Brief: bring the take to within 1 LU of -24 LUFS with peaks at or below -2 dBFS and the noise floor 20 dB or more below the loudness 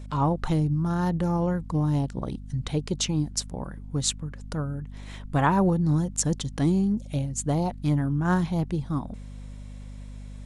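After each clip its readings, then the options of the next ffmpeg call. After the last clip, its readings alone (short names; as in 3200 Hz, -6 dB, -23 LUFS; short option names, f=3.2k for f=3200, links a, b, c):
hum 50 Hz; harmonics up to 250 Hz; hum level -35 dBFS; loudness -26.5 LUFS; peak -7.0 dBFS; loudness target -24.0 LUFS
-> -af "bandreject=f=50:t=h:w=4,bandreject=f=100:t=h:w=4,bandreject=f=150:t=h:w=4,bandreject=f=200:t=h:w=4,bandreject=f=250:t=h:w=4"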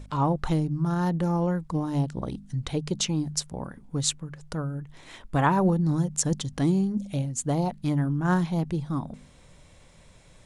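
hum none; loudness -27.0 LUFS; peak -7.0 dBFS; loudness target -24.0 LUFS
-> -af "volume=3dB"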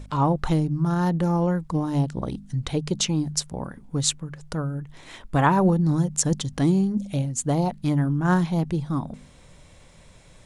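loudness -24.0 LUFS; peak -4.0 dBFS; noise floor -51 dBFS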